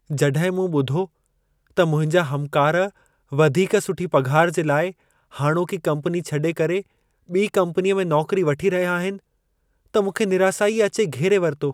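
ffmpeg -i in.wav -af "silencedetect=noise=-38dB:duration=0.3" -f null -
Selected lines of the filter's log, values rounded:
silence_start: 1.06
silence_end: 1.77 | silence_duration: 0.71
silence_start: 2.89
silence_end: 3.32 | silence_duration: 0.42
silence_start: 4.91
silence_end: 5.33 | silence_duration: 0.41
silence_start: 6.82
silence_end: 7.29 | silence_duration: 0.48
silence_start: 9.19
silence_end: 9.94 | silence_duration: 0.75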